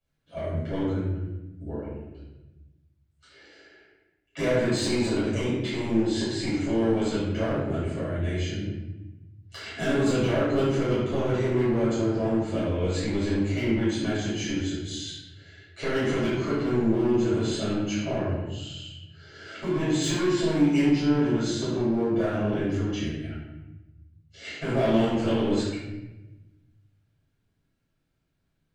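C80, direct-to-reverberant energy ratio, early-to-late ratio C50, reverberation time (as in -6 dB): 2.5 dB, -13.5 dB, -1.0 dB, 1.0 s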